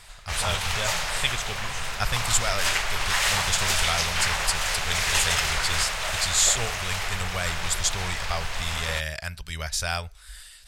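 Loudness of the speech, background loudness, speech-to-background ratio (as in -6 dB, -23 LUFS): -28.0 LUFS, -26.0 LUFS, -2.0 dB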